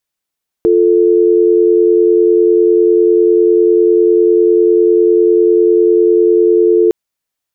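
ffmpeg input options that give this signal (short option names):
-f lavfi -i "aevalsrc='0.355*(sin(2*PI*350*t)+sin(2*PI*440*t))':d=6.26:s=44100"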